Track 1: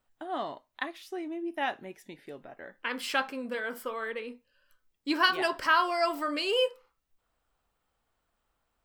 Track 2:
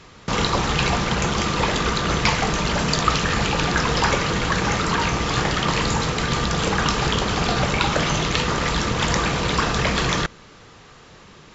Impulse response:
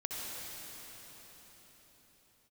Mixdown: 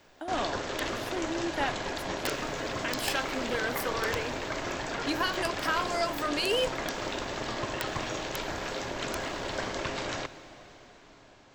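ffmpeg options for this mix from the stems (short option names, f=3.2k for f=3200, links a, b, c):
-filter_complex "[0:a]alimiter=limit=-21.5dB:level=0:latency=1:release=407,crystalizer=i=1:c=0,volume=1.5dB[a];[1:a]equalizer=f=580:t=o:w=0.24:g=5,aeval=exprs='val(0)*sin(2*PI*470*n/s)':c=same,aeval=exprs='(mod(2.37*val(0)+1,2)-1)/2.37':c=same,volume=-11.5dB,asplit=2[b][c];[c]volume=-14.5dB[d];[2:a]atrim=start_sample=2205[e];[d][e]afir=irnorm=-1:irlink=0[f];[a][b][f]amix=inputs=3:normalize=0"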